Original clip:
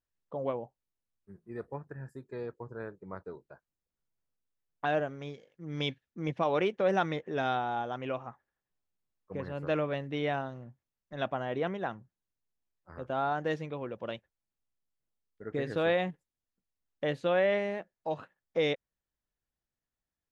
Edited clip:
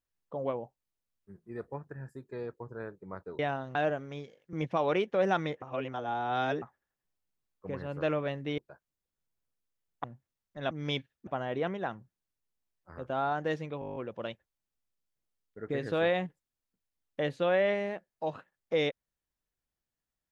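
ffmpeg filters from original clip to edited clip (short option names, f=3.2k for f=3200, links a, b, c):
-filter_complex "[0:a]asplit=18[a][b][c][d][e][f][g][h][i][j][k][l][m][n][o][p][q][r];[a]atrim=end=3.392[s];[b]atrim=start=10.238:end=10.602[t];[c]atrim=start=4.848:end=5.632[u];[d]atrim=start=6.188:end=7.282[v];[e]atrim=start=7.278:end=8.282,asetpts=PTS-STARTPTS,areverse[w];[f]atrim=start=8.278:end=10.242[x];[g]atrim=start=3.388:end=4.852[y];[h]atrim=start=10.598:end=11.272[z];[i]atrim=start=5.628:end=6.192[aa];[j]atrim=start=11.268:end=13.822[ab];[k]atrim=start=13.798:end=13.822[ac];[l]atrim=start=13.798:end=13.822[ad];[m]atrim=start=13.798:end=13.822[ae];[n]atrim=start=13.798:end=13.822[af];[o]atrim=start=13.798:end=13.822[ag];[p]atrim=start=13.798:end=13.822[ah];[q]atrim=start=13.798:end=13.822[ai];[r]atrim=start=13.798[aj];[s][t]acrossfade=d=0.004:c1=hsin:c2=hsin[ak];[ak][u]acrossfade=d=0.004:c1=hsin:c2=hsin[al];[al][v]acrossfade=d=0.004:c1=hsin:c2=hsin[am];[am][w]acrossfade=d=0.004:c1=hsin:c2=hsin[an];[an][x]acrossfade=d=0.004:c1=hsin:c2=hsin[ao];[ao][y]acrossfade=d=0.004:c1=hsin:c2=hsin[ap];[ap][z]acrossfade=d=0.004:c1=hsin:c2=hsin[aq];[aq][aa]acrossfade=d=0.004:c1=hsin:c2=hsin[ar];[ar][ab]acrossfade=d=0.004:c1=hsin:c2=hsin[as];[as][ac]acrossfade=d=0.004:c1=hsin:c2=hsin[at];[at][ad]acrossfade=d=0.004:c1=hsin:c2=hsin[au];[au][ae]acrossfade=d=0.004:c1=hsin:c2=hsin[av];[av][af]acrossfade=d=0.004:c1=hsin:c2=hsin[aw];[aw][ag]acrossfade=d=0.004:c1=hsin:c2=hsin[ax];[ax][ah]acrossfade=d=0.004:c1=hsin:c2=hsin[ay];[ay][ai]acrossfade=d=0.004:c1=hsin:c2=hsin[az];[az][aj]acrossfade=d=0.004:c1=hsin:c2=hsin"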